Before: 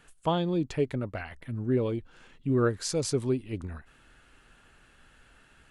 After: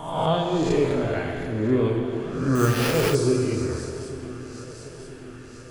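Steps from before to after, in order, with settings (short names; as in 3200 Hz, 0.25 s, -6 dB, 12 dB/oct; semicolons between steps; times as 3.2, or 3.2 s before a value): spectral swells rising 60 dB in 0.93 s; flange 0.38 Hz, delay 0.9 ms, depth 3 ms, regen -51%; swung echo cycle 0.985 s, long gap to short 3:1, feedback 56%, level -17 dB; plate-style reverb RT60 2.4 s, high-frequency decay 0.75×, DRR 1.5 dB; 2.55–3.15 sample-rate reducer 7600 Hz, jitter 0%; gain +6.5 dB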